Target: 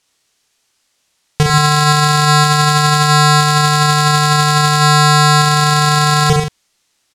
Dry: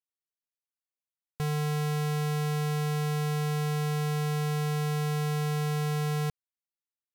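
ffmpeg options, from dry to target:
-filter_complex "[0:a]lowpass=6300,highshelf=f=4000:g=10.5,asplit=2[s0][s1];[s1]aecho=0:1:30|63|99.3|139.2|183.2:0.631|0.398|0.251|0.158|0.1[s2];[s0][s2]amix=inputs=2:normalize=0,alimiter=level_in=31.6:limit=0.891:release=50:level=0:latency=1,volume=0.891"

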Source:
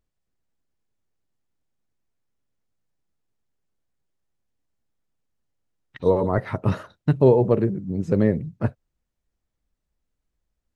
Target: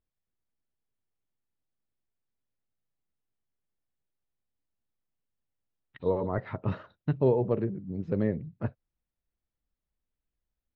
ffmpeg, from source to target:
-af "lowpass=f=4000:w=0.5412,lowpass=f=4000:w=1.3066,volume=0.376"

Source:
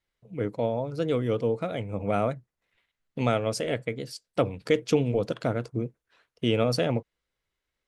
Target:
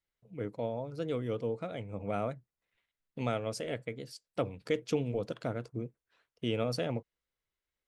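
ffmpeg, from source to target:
-filter_complex "[0:a]asettb=1/sr,asplit=3[s0][s1][s2];[s0]atrim=end=1.474[s3];[s1]atrim=start=1.47:end=2.26,asetpts=PTS-STARTPTS,afade=t=in:d=0.004:c=qsin,afade=t=out:st=0.786:d=0.004:c=qsin,lowpass=f=9800:w=0.5412,lowpass=f=9800:w=1.3066[s4];[s2]atrim=start=2.256[s5];[s3][s4]acrossfade=d=0.004:c1=hsin:c2=qsin[s6];[s6][s5]acrossfade=d=0.004:c1=qsin:c2=hsin,volume=0.398"

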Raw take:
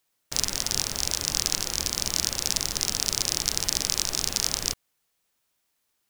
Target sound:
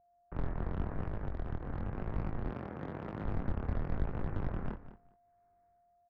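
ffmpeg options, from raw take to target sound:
-filter_complex "[0:a]dynaudnorm=f=110:g=11:m=5.62,aeval=exprs='max(val(0),0)':c=same,highpass=f=240:t=q:w=0.5412,highpass=f=240:t=q:w=1.307,lowpass=f=2100:t=q:w=0.5176,lowpass=f=2100:t=q:w=0.7071,lowpass=f=2100:t=q:w=1.932,afreqshift=-240,volume=25.1,asoftclip=hard,volume=0.0398,aecho=1:1:203|406:0.2|0.0319,flanger=delay=19:depth=5.7:speed=0.94,asettb=1/sr,asplit=3[s0][s1][s2];[s0]atrim=end=2.504[s3];[s1]atrim=start=2.5:end=3.25,asetpts=PTS-STARTPTS,afade=t=in:d=0.004:c=qsin,afade=t=out:st=0.746:d=0.004:c=qsin,highpass=150[s4];[s2]atrim=start=3.246[s5];[s3][s4]acrossfade=d=0.004:c1=hsin:c2=qsin[s6];[s6][s5]acrossfade=d=0.004:c1=qsin:c2=hsin,aeval=exprs='val(0)+0.000562*sin(2*PI*700*n/s)':c=same,aemphasis=mode=reproduction:type=riaa,asettb=1/sr,asplit=3[s7][s8][s9];[s7]atrim=end=1.024[s10];[s8]atrim=start=1.02:end=1.95,asetpts=PTS-STARTPTS,afade=t=in:d=0.004:c=qsin,afade=t=out:st=0.926:d=0.004:c=qsin,acompressor=threshold=0.0398:ratio=6[s11];[s9]atrim=start=1.946[s12];[s10][s11]acrossfade=d=0.004:c1=hsin:c2=qsin[s13];[s13][s12]acrossfade=d=0.004:c1=qsin:c2=hsin,volume=0.668"

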